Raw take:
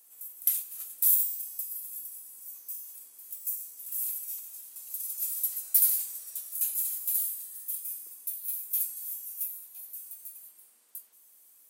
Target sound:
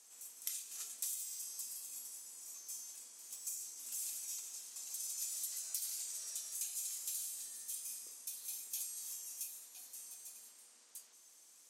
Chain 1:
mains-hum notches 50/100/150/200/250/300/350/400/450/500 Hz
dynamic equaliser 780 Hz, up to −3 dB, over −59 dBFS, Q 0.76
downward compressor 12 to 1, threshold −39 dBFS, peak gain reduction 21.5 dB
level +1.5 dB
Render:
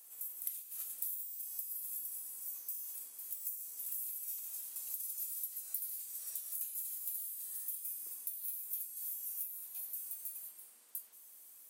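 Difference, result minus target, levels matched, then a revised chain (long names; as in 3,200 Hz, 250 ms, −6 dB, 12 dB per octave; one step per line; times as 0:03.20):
8,000 Hz band −5.5 dB
mains-hum notches 50/100/150/200/250/300/350/400/450/500 Hz
dynamic equaliser 780 Hz, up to −3 dB, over −59 dBFS, Q 0.76
low-pass with resonance 6,400 Hz, resonance Q 2.4
downward compressor 12 to 1, threshold −39 dBFS, peak gain reduction 11.5 dB
level +1.5 dB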